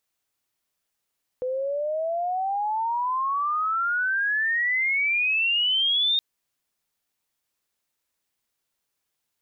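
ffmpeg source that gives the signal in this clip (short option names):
-f lavfi -i "aevalsrc='pow(10,(-24.5+5.5*t/4.77)/20)*sin(2*PI*500*4.77/log(3700/500)*(exp(log(3700/500)*t/4.77)-1))':d=4.77:s=44100"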